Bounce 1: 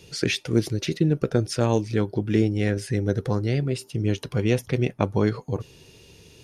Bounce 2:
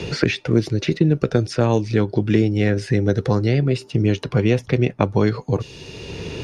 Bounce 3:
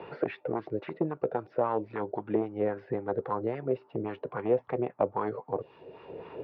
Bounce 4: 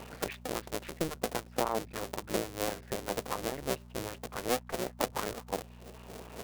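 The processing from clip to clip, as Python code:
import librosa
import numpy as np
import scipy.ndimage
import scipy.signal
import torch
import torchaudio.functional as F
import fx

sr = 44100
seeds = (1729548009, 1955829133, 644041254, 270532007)

y1 = scipy.signal.sosfilt(scipy.signal.butter(2, 5300.0, 'lowpass', fs=sr, output='sos'), x)
y1 = fx.notch(y1, sr, hz=3200.0, q=20.0)
y1 = fx.band_squash(y1, sr, depth_pct=70)
y1 = F.gain(torch.from_numpy(y1), 4.5).numpy()
y2 = np.clip(y1, -10.0 ** (-9.5 / 20.0), 10.0 ** (-9.5 / 20.0))
y2 = scipy.ndimage.gaussian_filter1d(y2, 2.7, mode='constant')
y2 = fx.wah_lfo(y2, sr, hz=3.7, low_hz=520.0, high_hz=1100.0, q=2.6)
y3 = fx.cycle_switch(y2, sr, every=2, mode='muted')
y3 = fx.dmg_buzz(y3, sr, base_hz=60.0, harmonics=4, level_db=-49.0, tilt_db=-4, odd_only=False)
y3 = fx.high_shelf(y3, sr, hz=3200.0, db=11.0)
y3 = F.gain(torch.from_numpy(y3), -2.5).numpy()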